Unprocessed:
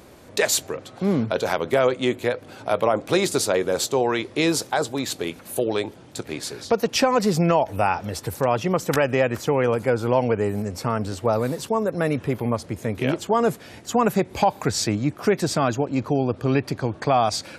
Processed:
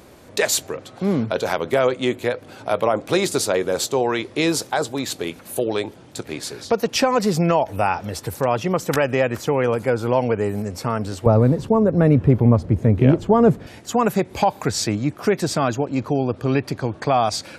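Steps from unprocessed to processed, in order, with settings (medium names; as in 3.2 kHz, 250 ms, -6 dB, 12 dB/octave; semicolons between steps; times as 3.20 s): 11.26–13.67 s: tilt EQ -4 dB/octave; trim +1 dB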